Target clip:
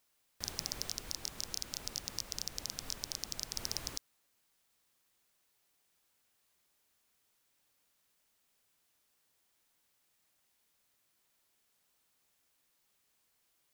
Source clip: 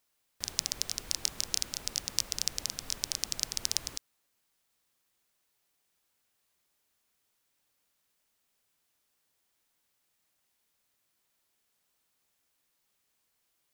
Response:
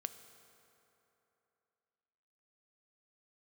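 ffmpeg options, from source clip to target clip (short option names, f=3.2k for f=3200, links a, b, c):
-filter_complex "[0:a]asettb=1/sr,asplit=3[a][b][c];[a]atrim=end=0.884[d];[b]atrim=start=0.88:end=3.56,asetpts=PTS-STARTPTS,afade=t=in:d=0.004:c=qsin,afade=t=out:st=2.676:d=0.004:c=qsin,acompressor=threshold=-37dB:ratio=1.5[e];[c]atrim=start=3.556[f];[d][e]acrossfade=d=0.004:c1=hsin:c2=qsin[g];[g][f]acrossfade=d=0.004:c1=qsin:c2=hsin,asoftclip=type=hard:threshold=-19.5dB,volume=1dB"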